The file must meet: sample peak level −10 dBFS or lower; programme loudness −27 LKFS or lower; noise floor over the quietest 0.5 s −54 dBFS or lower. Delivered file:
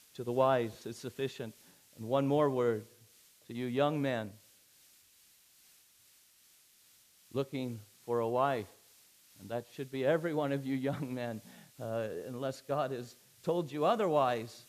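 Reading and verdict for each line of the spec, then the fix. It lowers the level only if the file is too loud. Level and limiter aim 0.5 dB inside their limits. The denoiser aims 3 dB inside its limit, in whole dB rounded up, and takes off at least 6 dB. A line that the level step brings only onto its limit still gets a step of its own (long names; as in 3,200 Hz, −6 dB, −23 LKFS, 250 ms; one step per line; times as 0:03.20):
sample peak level −14.5 dBFS: in spec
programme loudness −34.0 LKFS: in spec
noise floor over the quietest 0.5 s −65 dBFS: in spec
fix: no processing needed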